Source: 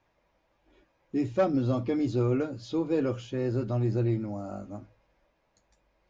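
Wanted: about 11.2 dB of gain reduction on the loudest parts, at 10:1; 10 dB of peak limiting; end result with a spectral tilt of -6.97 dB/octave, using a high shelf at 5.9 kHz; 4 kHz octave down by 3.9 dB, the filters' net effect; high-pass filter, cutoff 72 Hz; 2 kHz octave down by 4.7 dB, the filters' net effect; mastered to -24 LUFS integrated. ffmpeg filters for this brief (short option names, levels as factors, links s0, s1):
-af "highpass=72,equalizer=f=2000:t=o:g=-6,equalizer=f=4000:t=o:g=-5,highshelf=f=5900:g=5,acompressor=threshold=0.0282:ratio=10,volume=6.68,alimiter=limit=0.168:level=0:latency=1"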